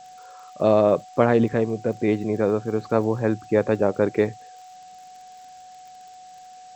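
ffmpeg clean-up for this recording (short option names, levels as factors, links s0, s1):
-af "adeclick=t=4,bandreject=f=740:w=30,afftdn=nr=22:nf=-45"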